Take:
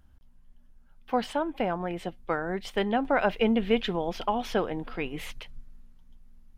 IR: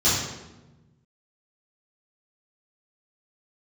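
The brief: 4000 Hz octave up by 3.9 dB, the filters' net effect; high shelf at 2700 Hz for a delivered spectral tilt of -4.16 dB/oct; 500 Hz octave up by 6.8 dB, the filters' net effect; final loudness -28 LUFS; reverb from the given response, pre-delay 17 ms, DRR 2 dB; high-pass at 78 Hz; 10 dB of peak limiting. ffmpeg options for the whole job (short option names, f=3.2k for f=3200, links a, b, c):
-filter_complex "[0:a]highpass=78,equalizer=f=500:t=o:g=8,highshelf=f=2.7k:g=-4,equalizer=f=4k:t=o:g=9,alimiter=limit=-17dB:level=0:latency=1,asplit=2[a][b];[1:a]atrim=start_sample=2205,adelay=17[c];[b][c]afir=irnorm=-1:irlink=0,volume=-18.5dB[d];[a][d]amix=inputs=2:normalize=0,volume=-2.5dB"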